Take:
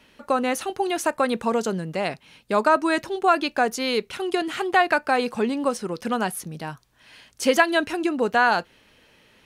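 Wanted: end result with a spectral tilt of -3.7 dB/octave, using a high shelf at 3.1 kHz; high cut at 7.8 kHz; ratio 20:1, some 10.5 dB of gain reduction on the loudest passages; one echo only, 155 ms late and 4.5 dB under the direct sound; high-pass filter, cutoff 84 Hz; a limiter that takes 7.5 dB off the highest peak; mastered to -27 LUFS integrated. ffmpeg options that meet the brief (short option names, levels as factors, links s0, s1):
-af "highpass=84,lowpass=7800,highshelf=f=3100:g=4,acompressor=threshold=0.0794:ratio=20,alimiter=limit=0.106:level=0:latency=1,aecho=1:1:155:0.596,volume=1.26"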